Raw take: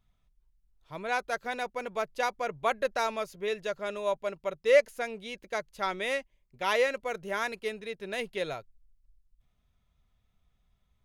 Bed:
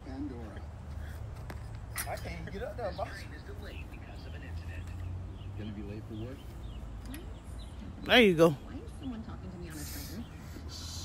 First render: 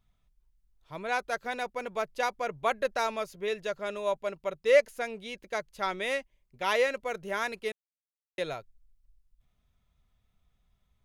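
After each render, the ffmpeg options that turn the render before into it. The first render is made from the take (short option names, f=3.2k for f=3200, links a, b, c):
-filter_complex "[0:a]asplit=3[a][b][c];[a]atrim=end=7.72,asetpts=PTS-STARTPTS,afade=t=out:st=7.716:d=0.004:c=hsin[d];[b]atrim=start=7.72:end=8.38,asetpts=PTS-STARTPTS,volume=0[e];[c]atrim=start=8.38,asetpts=PTS-STARTPTS,afade=t=in:d=0.004:c=hsin[f];[d][e][f]concat=n=3:v=0:a=1"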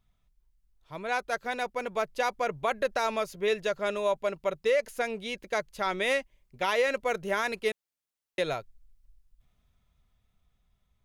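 -af "dynaudnorm=f=290:g=13:m=5dB,alimiter=limit=-17.5dB:level=0:latency=1:release=70"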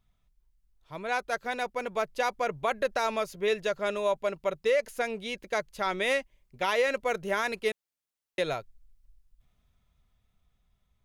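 -af anull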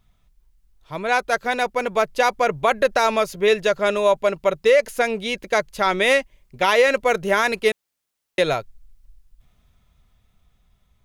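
-af "volume=10dB"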